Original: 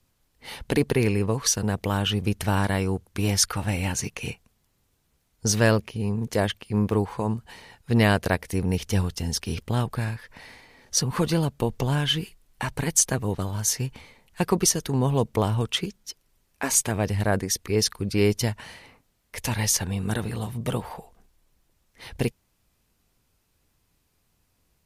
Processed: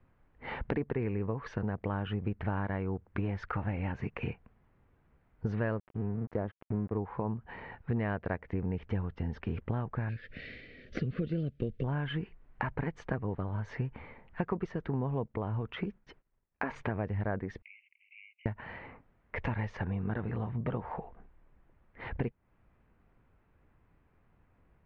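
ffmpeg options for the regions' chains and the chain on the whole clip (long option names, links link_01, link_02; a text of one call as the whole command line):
ffmpeg -i in.wav -filter_complex "[0:a]asettb=1/sr,asplit=3[link_01][link_02][link_03];[link_01]atrim=end=5.774[link_04];[link_02]atrim=start=5.77:end=6.97,asetpts=PTS-STARTPTS,afade=type=in:duration=0.004:curve=qsin,afade=type=out:start_time=1.196:duration=0.004:curve=qsin,equalizer=frequency=2500:width=0.65:gain=-11.5,aeval=exprs='sgn(val(0))*max(abs(val(0))-0.01,0)':channel_layout=same[link_05];[link_03]atrim=start=6.966[link_06];[link_04][link_05]acrossfade=duration=0.004:curve1=hsin:curve2=qsin[link_07];[link_07][link_06]acrossfade=duration=0.004:curve1=qsin:curve2=hsin,asettb=1/sr,asplit=3[link_08][link_09][link_10];[link_08]atrim=end=10.094[link_11];[link_09]atrim=start=10.09:end=11.84,asetpts=PTS-STARTPTS,afade=type=in:duration=0.004:curve=qsin,afade=type=out:start_time=1.746:duration=0.004:curve=qsin,highshelf=frequency=2500:width_type=q:width=1.5:gain=12,deesser=0.65,asuperstop=centerf=920:order=4:qfactor=0.94[link_12];[link_10]atrim=start=11.836[link_13];[link_11][link_12]acrossfade=duration=0.004:curve1=hsin:curve2=qsin[link_14];[link_14][link_13]acrossfade=duration=0.004:curve1=qsin:curve2=hsin,asettb=1/sr,asplit=3[link_15][link_16][link_17];[link_15]atrim=end=15.284[link_18];[link_16]atrim=start=15.28:end=16.76,asetpts=PTS-STARTPTS,afade=type=in:duration=0.004:curve=qsin,afade=type=out:start_time=1.476:duration=0.004:curve=qsin,agate=range=-33dB:threshold=-56dB:ratio=3:release=100:detection=peak,acompressor=threshold=-24dB:ratio=3:attack=3.2:release=140:knee=1:detection=peak[link_19];[link_17]atrim=start=16.756[link_20];[link_18][link_19]acrossfade=duration=0.004:curve1=hsin:curve2=qsin[link_21];[link_21][link_20]acrossfade=duration=0.004:curve1=qsin:curve2=hsin,asettb=1/sr,asplit=3[link_22][link_23][link_24];[link_22]atrim=end=17.624[link_25];[link_23]atrim=start=17.62:end=18.46,asetpts=PTS-STARTPTS,afade=type=in:duration=0.004:curve=qsin,afade=type=out:start_time=0.836:duration=0.004:curve=qsin,acompressor=threshold=-32dB:ratio=12:attack=3.2:release=140:knee=1:detection=peak,acrusher=bits=3:mode=log:mix=0:aa=0.000001,asuperpass=centerf=2500:order=12:qfactor=3[link_26];[link_24]atrim=start=18.456[link_27];[link_25][link_26]acrossfade=duration=0.004:curve1=hsin:curve2=qsin[link_28];[link_28][link_27]acrossfade=duration=0.004:curve1=qsin:curve2=hsin,lowpass=frequency=2000:width=0.5412,lowpass=frequency=2000:width=1.3066,acompressor=threshold=-36dB:ratio=4,volume=4dB" out.wav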